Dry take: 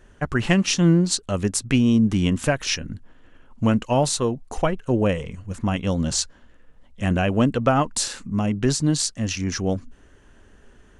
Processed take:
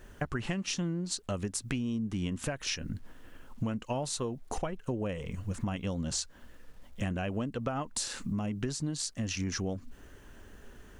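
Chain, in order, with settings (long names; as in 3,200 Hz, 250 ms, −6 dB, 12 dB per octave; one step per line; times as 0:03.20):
bit reduction 11 bits
downward compressor 12 to 1, threshold −30 dBFS, peak gain reduction 18 dB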